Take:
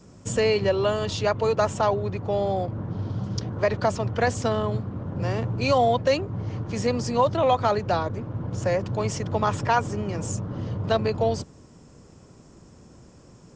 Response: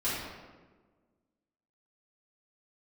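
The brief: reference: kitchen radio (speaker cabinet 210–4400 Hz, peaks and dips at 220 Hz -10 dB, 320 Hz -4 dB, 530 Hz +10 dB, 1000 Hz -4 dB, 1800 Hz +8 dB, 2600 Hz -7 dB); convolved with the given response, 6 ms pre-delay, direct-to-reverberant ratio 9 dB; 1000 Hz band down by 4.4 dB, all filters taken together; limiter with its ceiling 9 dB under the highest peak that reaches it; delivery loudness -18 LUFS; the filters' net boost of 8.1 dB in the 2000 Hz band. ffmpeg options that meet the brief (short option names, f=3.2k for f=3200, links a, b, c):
-filter_complex "[0:a]equalizer=f=1k:t=o:g=-8.5,equalizer=f=2k:t=o:g=8.5,alimiter=limit=-19dB:level=0:latency=1,asplit=2[a][b];[1:a]atrim=start_sample=2205,adelay=6[c];[b][c]afir=irnorm=-1:irlink=0,volume=-17dB[d];[a][d]amix=inputs=2:normalize=0,highpass=210,equalizer=f=220:t=q:w=4:g=-10,equalizer=f=320:t=q:w=4:g=-4,equalizer=f=530:t=q:w=4:g=10,equalizer=f=1k:t=q:w=4:g=-4,equalizer=f=1.8k:t=q:w=4:g=8,equalizer=f=2.6k:t=q:w=4:g=-7,lowpass=f=4.4k:w=0.5412,lowpass=f=4.4k:w=1.3066,volume=9dB"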